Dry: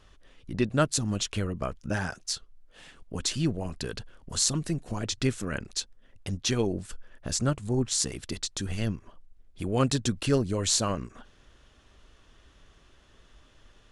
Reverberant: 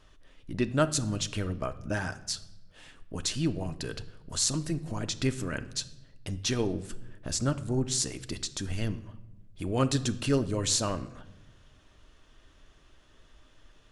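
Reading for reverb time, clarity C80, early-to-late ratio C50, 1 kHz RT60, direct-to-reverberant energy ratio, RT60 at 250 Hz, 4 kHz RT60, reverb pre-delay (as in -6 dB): 1.0 s, 18.5 dB, 16.0 dB, 0.85 s, 10.0 dB, 1.4 s, 0.70 s, 3 ms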